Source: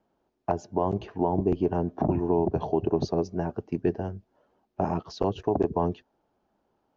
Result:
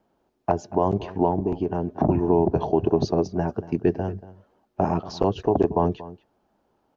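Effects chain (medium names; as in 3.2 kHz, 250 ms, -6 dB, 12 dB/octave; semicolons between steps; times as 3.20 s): 1.30–1.97 s: compression, threshold -25 dBFS, peak gain reduction 6.5 dB; echo from a far wall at 40 m, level -17 dB; trim +4.5 dB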